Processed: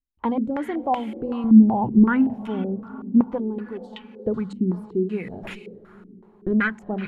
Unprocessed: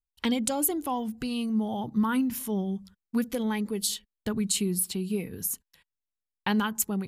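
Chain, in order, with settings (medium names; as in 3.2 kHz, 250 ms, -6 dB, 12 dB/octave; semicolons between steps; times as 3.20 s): 5.30–6.70 s: comb filter that takes the minimum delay 0.56 ms; hum notches 50/100/150/200/250 Hz; 1.44–2.27 s: tilt EQ -3 dB/octave; 3.38–3.93 s: static phaser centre 550 Hz, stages 6; echo that smears into a reverb 455 ms, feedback 48%, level -15 dB; step-sequenced low-pass 5.3 Hz 270–2500 Hz; trim +2 dB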